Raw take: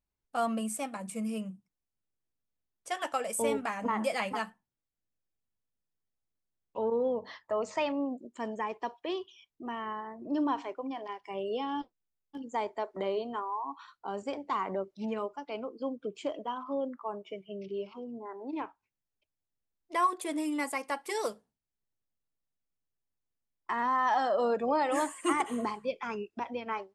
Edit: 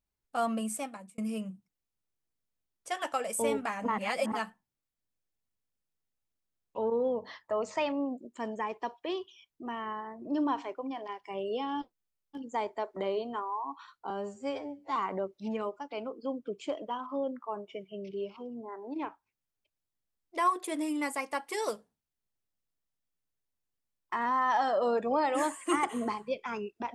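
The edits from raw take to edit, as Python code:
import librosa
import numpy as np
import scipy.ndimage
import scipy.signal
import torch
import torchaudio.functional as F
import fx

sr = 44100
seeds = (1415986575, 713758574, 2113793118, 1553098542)

y = fx.edit(x, sr, fx.fade_out_span(start_s=0.77, length_s=0.41),
    fx.reverse_span(start_s=3.98, length_s=0.34),
    fx.stretch_span(start_s=14.1, length_s=0.43, factor=2.0), tone=tone)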